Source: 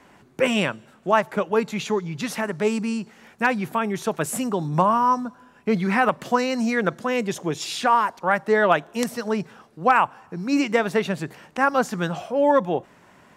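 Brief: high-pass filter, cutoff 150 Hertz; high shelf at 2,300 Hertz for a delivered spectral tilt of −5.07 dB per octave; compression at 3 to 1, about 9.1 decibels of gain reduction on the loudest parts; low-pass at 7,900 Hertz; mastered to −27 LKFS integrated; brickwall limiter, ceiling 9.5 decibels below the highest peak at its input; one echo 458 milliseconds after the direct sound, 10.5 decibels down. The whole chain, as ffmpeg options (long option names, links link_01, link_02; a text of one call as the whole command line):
ffmpeg -i in.wav -af "highpass=150,lowpass=7900,highshelf=frequency=2300:gain=-8.5,acompressor=threshold=-27dB:ratio=3,alimiter=limit=-24dB:level=0:latency=1,aecho=1:1:458:0.299,volume=7dB" out.wav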